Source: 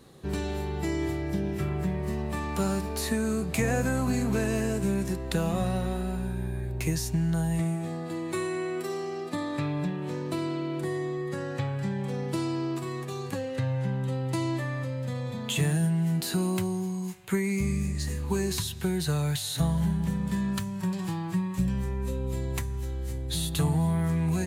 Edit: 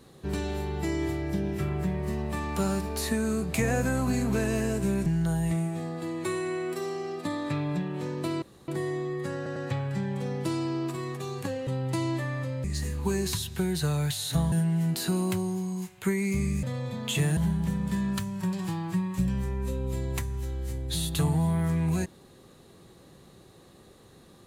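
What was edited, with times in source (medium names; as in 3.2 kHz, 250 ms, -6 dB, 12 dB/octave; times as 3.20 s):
5.06–7.14 s: delete
10.50–10.76 s: room tone
11.44 s: stutter 0.10 s, 3 plays
13.55–14.07 s: delete
15.04–15.78 s: swap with 17.89–19.77 s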